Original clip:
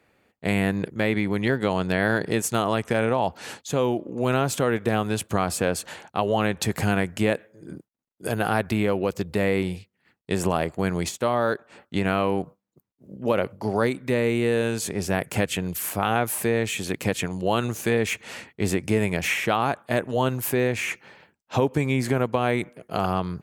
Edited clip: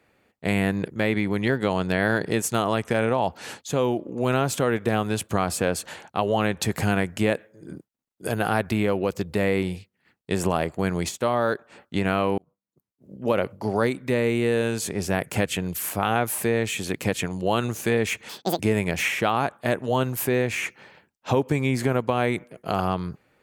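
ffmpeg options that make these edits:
-filter_complex "[0:a]asplit=4[a][b][c][d];[a]atrim=end=12.38,asetpts=PTS-STARTPTS,afade=t=out:st=12.376:d=0.004:c=hsin[e];[b]atrim=start=12.38:end=18.294,asetpts=PTS-STARTPTS,afade=t=in:d=0.92[f];[c]atrim=start=18.29:end=18.85,asetpts=PTS-STARTPTS,asetrate=80703,aresample=44100,atrim=end_sample=13495,asetpts=PTS-STARTPTS[g];[d]atrim=start=18.846[h];[e][f]concat=n=2:v=0:a=1[i];[i][g]acrossfade=d=0.004:c1=hsin:c2=hsin[j];[j][h]acrossfade=d=0.004:c1=hsin:c2=hsin"

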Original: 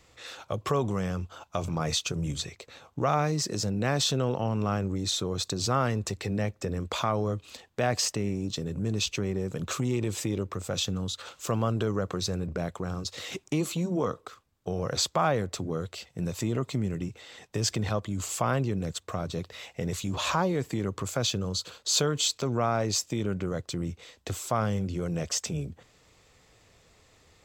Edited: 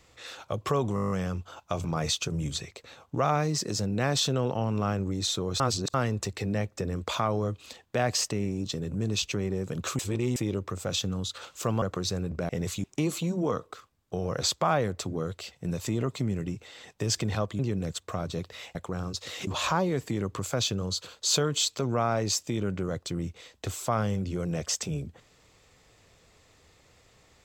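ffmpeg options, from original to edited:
-filter_complex "[0:a]asplit=19[a][b][c][d][e][f][g][h][i][j][k][l][m][n][o][p][q][r][s];[a]atrim=end=0.972[t];[b]atrim=start=0.948:end=0.972[u];[c]atrim=start=0.948:end=0.972[v];[d]atrim=start=0.948:end=0.972[w];[e]atrim=start=0.948:end=0.972[x];[f]atrim=start=0.948:end=0.972[y];[g]atrim=start=0.948:end=0.972[z];[h]atrim=start=0.948:end=0.972[aa];[i]atrim=start=0.948:end=5.442[ab];[j]atrim=start=5.438:end=5.782,asetpts=PTS-STARTPTS,areverse[ac];[k]atrim=start=5.778:end=9.832[ad];[l]atrim=start=9.828:end=10.202,asetpts=PTS-STARTPTS,areverse[ae];[m]atrim=start=10.198:end=11.662[af];[n]atrim=start=11.988:end=12.662[ag];[o]atrim=start=19.748:end=20.102[ah];[p]atrim=start=13.378:end=18.132[ai];[q]atrim=start=18.588:end=19.752[aj];[r]atrim=start=12.658:end=13.382[ak];[s]atrim=start=20.098[al];[t][u]acrossfade=d=0.004:c1=hsin:c2=hsin[am];[am][v]acrossfade=d=0.004:c1=hsin:c2=hsin[an];[an][w]acrossfade=d=0.004:c1=hsin:c2=hsin[ao];[ao][x]acrossfade=d=0.004:c1=hsin:c2=hsin[ap];[ap][y]acrossfade=d=0.004:c1=hsin:c2=hsin[aq];[aq][z]acrossfade=d=0.004:c1=hsin:c2=hsin[ar];[ar][aa]acrossfade=d=0.004:c1=hsin:c2=hsin[as];[as][ab]acrossfade=d=0.004:c1=hsin:c2=hsin[at];[at][ac]acrossfade=d=0.004:c1=hsin:c2=hsin[au];[au][ad]acrossfade=d=0.004:c1=hsin:c2=hsin[av];[av][ae]acrossfade=d=0.004:c1=hsin:c2=hsin[aw];[aw][af]acrossfade=d=0.004:c1=hsin:c2=hsin[ax];[ax][ag]acrossfade=d=0.004:c1=hsin:c2=hsin[ay];[ay][ah]acrossfade=d=0.004:c1=hsin:c2=hsin[az];[az][ai]acrossfade=d=0.004:c1=hsin:c2=hsin[ba];[ba][aj]acrossfade=d=0.004:c1=hsin:c2=hsin[bb];[bb][ak]acrossfade=d=0.004:c1=hsin:c2=hsin[bc];[bc][al]acrossfade=d=0.004:c1=hsin:c2=hsin"

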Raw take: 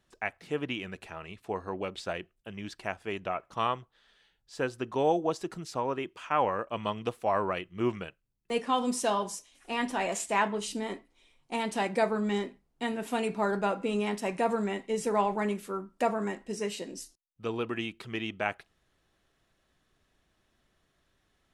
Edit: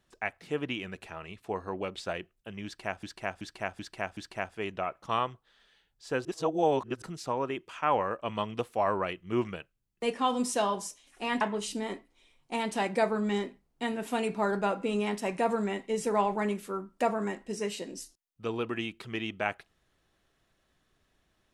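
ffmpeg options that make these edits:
-filter_complex "[0:a]asplit=8[a][b][c][d][e][f][g][h];[a]atrim=end=3.032[i];[b]atrim=start=2.648:end=3.032[j];[c]atrim=start=2.648:end=3.032[k];[d]atrim=start=2.648:end=3.032[l];[e]atrim=start=2.648:end=4.732[m];[f]atrim=start=4.728:end=5.502,asetpts=PTS-STARTPTS,areverse[n];[g]atrim=start=5.498:end=9.892[o];[h]atrim=start=10.408[p];[i][j]acrossfade=d=0.004:c1=hsin:c2=hsin[q];[q][k]acrossfade=d=0.004:c1=hsin:c2=hsin[r];[r][l]acrossfade=d=0.004:c1=hsin:c2=hsin[s];[s][m]acrossfade=d=0.004:c1=hsin:c2=hsin[t];[t][n]acrossfade=d=0.004:c1=hsin:c2=hsin[u];[u][o]acrossfade=d=0.004:c1=hsin:c2=hsin[v];[v][p]acrossfade=d=0.004:c1=hsin:c2=hsin"

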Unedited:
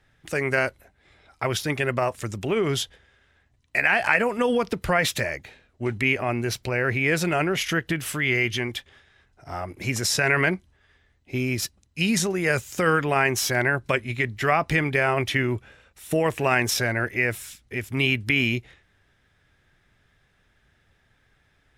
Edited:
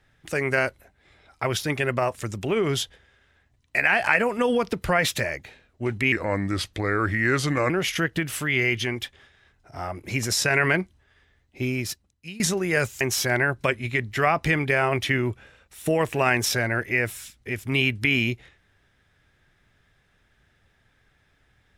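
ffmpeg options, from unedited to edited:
-filter_complex "[0:a]asplit=5[a][b][c][d][e];[a]atrim=end=6.124[f];[b]atrim=start=6.12:end=7.43,asetpts=PTS-STARTPTS,asetrate=36603,aresample=44100[g];[c]atrim=start=7.426:end=12.13,asetpts=PTS-STARTPTS,afade=t=out:st=3.934:d=0.77:silence=0.0749894[h];[d]atrim=start=12.13:end=12.742,asetpts=PTS-STARTPTS,afade=t=in:d=0.004:c=hsin:silence=0.0749894[i];[e]atrim=start=13.258[j];[f][g]acrossfade=d=0.004:c1=hsin:c2=hsin[k];[h][i]concat=n=2:v=0:a=1[l];[k][l]acrossfade=d=0.004:c1=hsin:c2=hsin[m];[m][j]acrossfade=d=0.004:c1=hsin:c2=hsin"

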